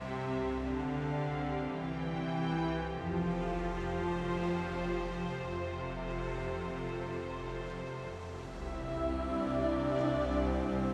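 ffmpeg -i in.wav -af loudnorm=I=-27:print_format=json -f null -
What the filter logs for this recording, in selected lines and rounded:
"input_i" : "-35.4",
"input_tp" : "-19.3",
"input_lra" : "4.5",
"input_thresh" : "-45.4",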